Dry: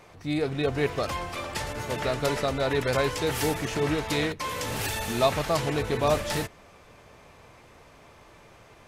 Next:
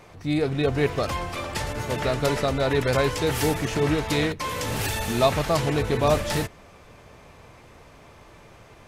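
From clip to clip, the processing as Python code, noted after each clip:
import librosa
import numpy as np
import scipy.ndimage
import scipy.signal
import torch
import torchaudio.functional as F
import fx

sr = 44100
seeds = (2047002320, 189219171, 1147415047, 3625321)

y = fx.low_shelf(x, sr, hz=270.0, db=4.0)
y = y * librosa.db_to_amplitude(2.0)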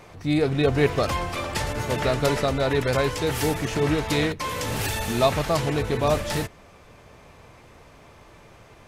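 y = fx.rider(x, sr, range_db=10, speed_s=2.0)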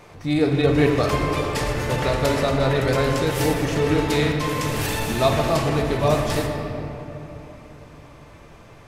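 y = fx.room_shoebox(x, sr, seeds[0], volume_m3=190.0, walls='hard', distance_m=0.39)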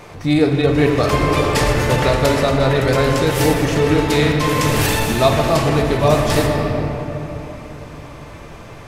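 y = fx.rider(x, sr, range_db=4, speed_s=0.5)
y = y * librosa.db_to_amplitude(5.5)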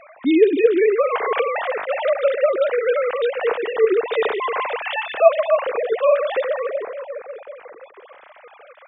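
y = fx.sine_speech(x, sr)
y = y * librosa.db_to_amplitude(-3.5)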